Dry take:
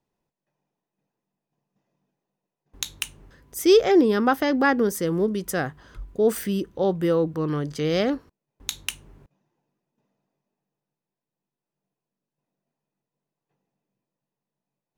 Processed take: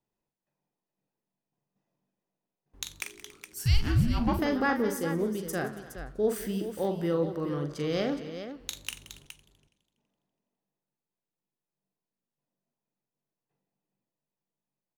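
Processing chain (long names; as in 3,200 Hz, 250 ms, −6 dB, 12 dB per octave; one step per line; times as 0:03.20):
multi-tap delay 42/175/280/417 ms −7.5/−17.5/−20/−10 dB
0:03.01–0:04.39: frequency shifter −460 Hz
feedback echo with a swinging delay time 83 ms, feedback 71%, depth 200 cents, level −20 dB
level −7.5 dB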